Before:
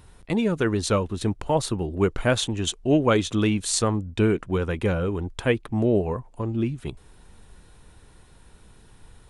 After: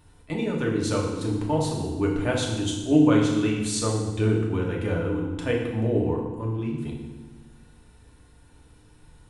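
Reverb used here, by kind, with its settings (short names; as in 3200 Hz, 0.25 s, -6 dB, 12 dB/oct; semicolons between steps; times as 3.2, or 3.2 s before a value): FDN reverb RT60 1.2 s, low-frequency decay 1.55×, high-frequency decay 0.9×, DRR -2.5 dB; gain -7.5 dB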